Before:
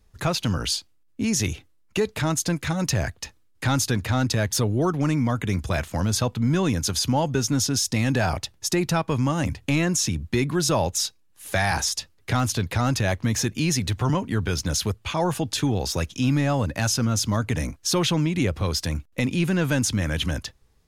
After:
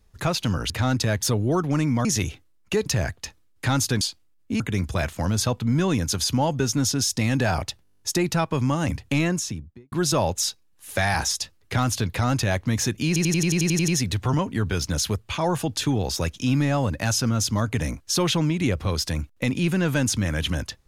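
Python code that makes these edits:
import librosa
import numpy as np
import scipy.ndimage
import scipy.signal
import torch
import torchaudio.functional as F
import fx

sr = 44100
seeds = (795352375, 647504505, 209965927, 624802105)

y = fx.studio_fade_out(x, sr, start_s=9.75, length_s=0.74)
y = fx.edit(y, sr, fx.swap(start_s=0.7, length_s=0.59, other_s=4.0, other_length_s=1.35),
    fx.cut(start_s=2.1, length_s=0.75),
    fx.stutter(start_s=8.58, slice_s=0.02, count=10),
    fx.stutter(start_s=13.64, slice_s=0.09, count=10), tone=tone)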